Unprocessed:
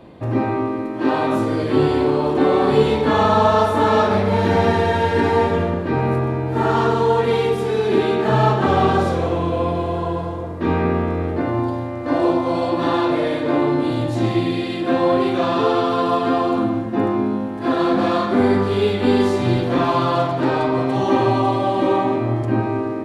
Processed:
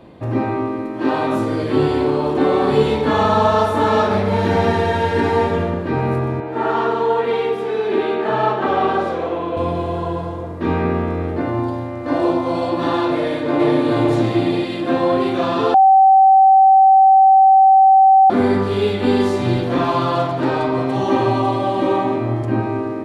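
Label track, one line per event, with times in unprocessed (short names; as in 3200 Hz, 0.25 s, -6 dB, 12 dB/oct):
6.400000	9.570000	three-band isolator lows -15 dB, under 250 Hz, highs -12 dB, over 3700 Hz
13.160000	13.780000	echo throw 0.43 s, feedback 45%, level -1 dB
15.740000	18.300000	bleep 770 Hz -6.5 dBFS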